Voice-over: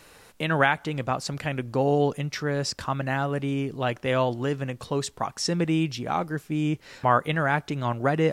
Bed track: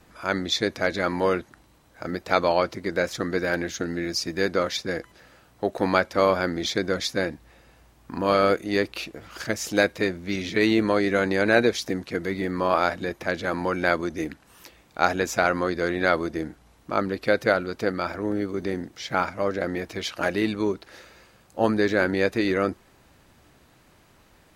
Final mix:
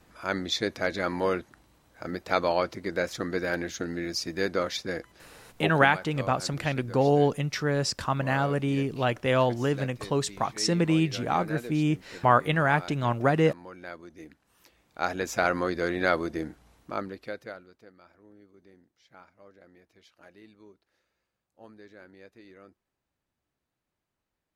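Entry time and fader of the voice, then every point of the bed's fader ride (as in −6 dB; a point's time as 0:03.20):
5.20 s, +0.5 dB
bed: 0:05.73 −4 dB
0:05.97 −19 dB
0:14.03 −19 dB
0:15.46 −3 dB
0:16.75 −3 dB
0:17.89 −28.5 dB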